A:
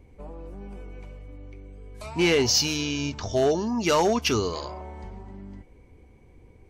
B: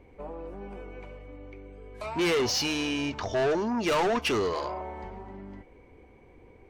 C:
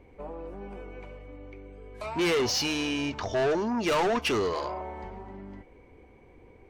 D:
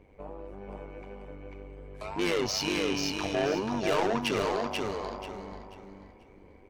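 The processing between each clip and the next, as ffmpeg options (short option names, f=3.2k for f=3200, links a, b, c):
-af "bass=f=250:g=-10,treble=f=4k:g=-13,asoftclip=type=tanh:threshold=-27.5dB,volume=5dB"
-af anull
-af "tremolo=f=99:d=0.75,aecho=1:1:487|974|1461|1948:0.668|0.18|0.0487|0.0132"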